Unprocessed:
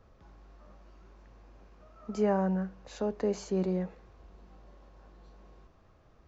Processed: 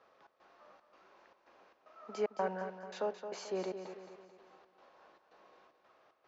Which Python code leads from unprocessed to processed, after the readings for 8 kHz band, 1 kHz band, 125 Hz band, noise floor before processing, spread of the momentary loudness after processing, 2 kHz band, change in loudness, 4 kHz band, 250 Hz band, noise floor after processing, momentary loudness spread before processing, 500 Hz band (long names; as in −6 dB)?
can't be measured, −3.0 dB, below −15 dB, −61 dBFS, 18 LU, −1.0 dB, −8.0 dB, −0.5 dB, −15.0 dB, −73 dBFS, 13 LU, −5.5 dB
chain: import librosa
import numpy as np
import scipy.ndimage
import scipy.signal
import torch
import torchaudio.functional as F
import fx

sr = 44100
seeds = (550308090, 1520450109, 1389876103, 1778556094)

y = fx.step_gate(x, sr, bpm=113, pattern='xx.xxx.xxx.', floor_db=-60.0, edge_ms=4.5)
y = fx.bandpass_edges(y, sr, low_hz=570.0, high_hz=4700.0)
y = fx.echo_feedback(y, sr, ms=219, feedback_pct=46, wet_db=-9)
y = y * 10.0 ** (2.0 / 20.0)